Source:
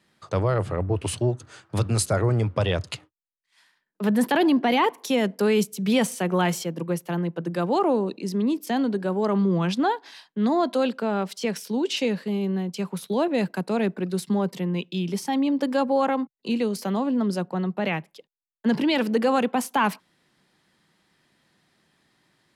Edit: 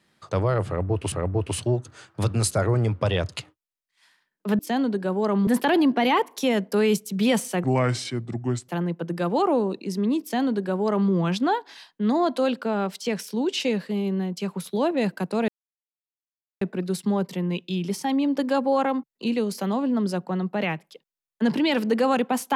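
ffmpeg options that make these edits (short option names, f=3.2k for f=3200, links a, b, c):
-filter_complex "[0:a]asplit=7[a][b][c][d][e][f][g];[a]atrim=end=1.122[h];[b]atrim=start=0.668:end=4.142[i];[c]atrim=start=8.588:end=9.472[j];[d]atrim=start=4.138:end=6.314[k];[e]atrim=start=6.31:end=7.05,asetpts=PTS-STARTPTS,asetrate=31311,aresample=44100,atrim=end_sample=45963,asetpts=PTS-STARTPTS[l];[f]atrim=start=7.046:end=13.85,asetpts=PTS-STARTPTS,afade=t=out:st=6.8:d=0.004:c=hsin,apad=pad_dur=1.13[m];[g]atrim=start=13.85,asetpts=PTS-STARTPTS,afade=t=in:d=0.004:c=hsin[n];[h][i]acrossfade=d=0.004:c1=hsin:c2=hsin[o];[o][j]acrossfade=d=0.004:c1=hsin:c2=hsin[p];[p][k]acrossfade=d=0.004:c1=hsin:c2=hsin[q];[q][l]acrossfade=d=0.004:c1=hsin:c2=hsin[r];[m][n]concat=n=2:v=0:a=1[s];[r][s]acrossfade=d=0.004:c1=hsin:c2=hsin"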